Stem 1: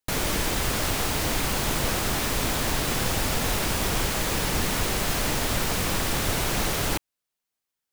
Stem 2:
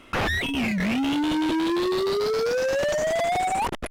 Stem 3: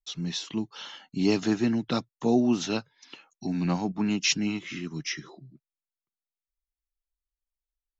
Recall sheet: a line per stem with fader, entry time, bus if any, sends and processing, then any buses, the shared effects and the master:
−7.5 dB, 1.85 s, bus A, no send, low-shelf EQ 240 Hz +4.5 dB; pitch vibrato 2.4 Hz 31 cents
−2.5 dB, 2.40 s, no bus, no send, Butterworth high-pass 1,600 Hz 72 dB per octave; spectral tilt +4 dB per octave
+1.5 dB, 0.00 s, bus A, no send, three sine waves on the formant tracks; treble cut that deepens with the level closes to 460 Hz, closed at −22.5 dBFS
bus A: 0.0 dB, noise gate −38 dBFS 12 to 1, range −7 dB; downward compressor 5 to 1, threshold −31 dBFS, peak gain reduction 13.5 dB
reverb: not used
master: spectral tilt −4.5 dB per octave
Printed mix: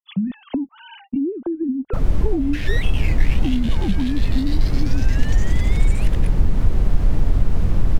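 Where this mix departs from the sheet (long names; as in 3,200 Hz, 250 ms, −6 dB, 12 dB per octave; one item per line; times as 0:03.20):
stem 1 −7.5 dB → +3.0 dB
stem 3 +1.5 dB → +12.0 dB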